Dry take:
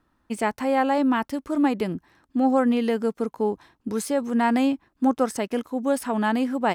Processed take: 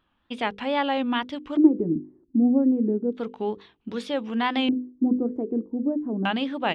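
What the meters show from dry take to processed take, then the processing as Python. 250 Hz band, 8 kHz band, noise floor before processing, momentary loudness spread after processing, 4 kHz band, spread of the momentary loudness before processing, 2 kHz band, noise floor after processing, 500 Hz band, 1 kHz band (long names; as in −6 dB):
+0.5 dB, below −15 dB, −70 dBFS, 10 LU, +5.5 dB, 9 LU, −1.0 dB, −71 dBFS, −3.5 dB, −4.5 dB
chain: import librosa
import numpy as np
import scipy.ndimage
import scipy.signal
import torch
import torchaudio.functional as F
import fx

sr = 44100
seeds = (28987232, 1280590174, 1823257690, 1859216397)

y = fx.filter_lfo_lowpass(x, sr, shape='square', hz=0.32, low_hz=340.0, high_hz=3300.0, q=5.2)
y = fx.wow_flutter(y, sr, seeds[0], rate_hz=2.1, depth_cents=140.0)
y = fx.hum_notches(y, sr, base_hz=50, count=10)
y = y * 10.0 ** (-3.5 / 20.0)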